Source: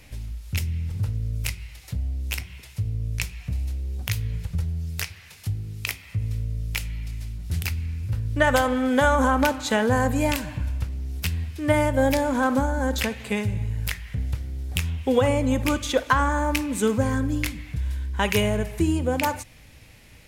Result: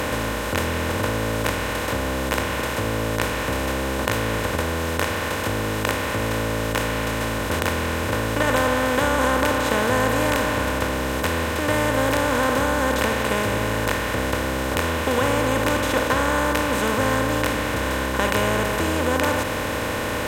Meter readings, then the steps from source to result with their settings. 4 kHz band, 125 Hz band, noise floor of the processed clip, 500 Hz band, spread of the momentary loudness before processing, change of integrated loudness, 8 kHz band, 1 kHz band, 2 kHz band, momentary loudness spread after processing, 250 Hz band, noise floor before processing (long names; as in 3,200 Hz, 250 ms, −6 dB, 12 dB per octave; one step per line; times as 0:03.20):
+6.0 dB, −0.5 dB, −26 dBFS, +4.0 dB, 11 LU, +3.0 dB, +5.5 dB, +4.5 dB, +6.0 dB, 4 LU, +1.5 dB, −48 dBFS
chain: compressor on every frequency bin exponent 0.2
level −8 dB